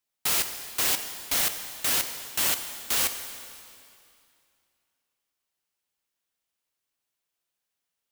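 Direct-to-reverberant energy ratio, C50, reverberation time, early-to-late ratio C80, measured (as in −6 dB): 7.0 dB, 8.5 dB, 2.5 s, 9.5 dB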